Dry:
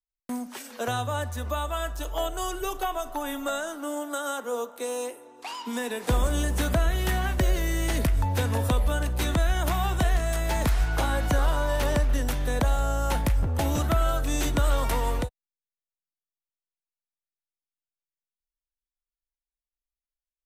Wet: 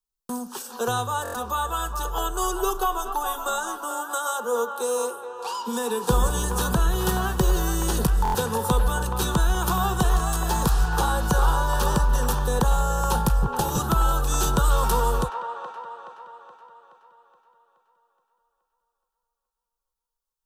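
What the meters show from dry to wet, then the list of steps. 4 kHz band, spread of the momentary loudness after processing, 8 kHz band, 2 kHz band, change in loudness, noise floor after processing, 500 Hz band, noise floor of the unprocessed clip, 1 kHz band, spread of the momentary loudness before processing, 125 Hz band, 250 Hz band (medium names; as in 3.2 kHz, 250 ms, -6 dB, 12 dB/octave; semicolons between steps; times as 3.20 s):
+2.5 dB, 9 LU, +6.5 dB, +1.0 dB, +3.0 dB, -84 dBFS, +2.5 dB, under -85 dBFS, +6.5 dB, 7 LU, +1.5 dB, +2.0 dB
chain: static phaser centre 420 Hz, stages 8; on a send: feedback echo behind a band-pass 423 ms, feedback 51%, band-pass 1.2 kHz, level -5.5 dB; on the sum: buffer glitch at 1.23/8.23 s, samples 1024, times 4; trim +7 dB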